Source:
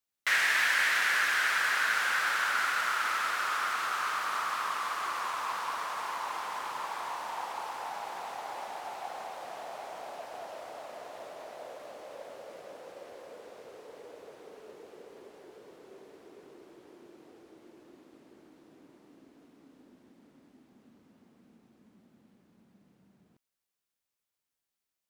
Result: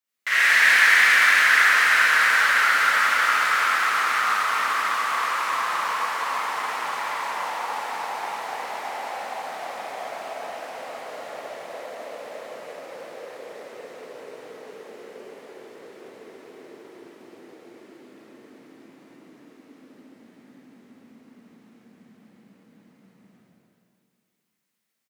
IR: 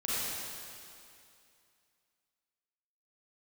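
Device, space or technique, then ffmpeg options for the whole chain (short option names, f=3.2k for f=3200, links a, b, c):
stadium PA: -filter_complex "[0:a]highpass=130,equalizer=f=2k:t=o:w=0.57:g=5.5,aecho=1:1:250.7|288.6:0.282|0.251[a];[1:a]atrim=start_sample=2205[b];[a][b]afir=irnorm=-1:irlink=0"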